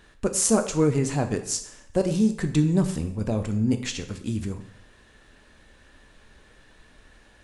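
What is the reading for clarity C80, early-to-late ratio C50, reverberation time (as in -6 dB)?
14.0 dB, 11.0 dB, 0.70 s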